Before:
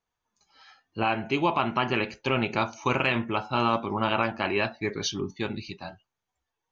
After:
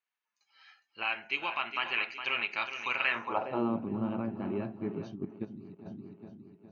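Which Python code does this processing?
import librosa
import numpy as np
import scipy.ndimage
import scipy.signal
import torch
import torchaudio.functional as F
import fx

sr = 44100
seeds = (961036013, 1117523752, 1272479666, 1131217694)

p1 = fx.notch(x, sr, hz=3400.0, q=12.0)
p2 = p1 + fx.echo_feedback(p1, sr, ms=411, feedback_pct=51, wet_db=-9, dry=0)
p3 = fx.level_steps(p2, sr, step_db=14, at=(5.14, 5.85), fade=0.02)
y = fx.filter_sweep_bandpass(p3, sr, from_hz=2400.0, to_hz=200.0, start_s=2.99, end_s=3.79, q=1.5)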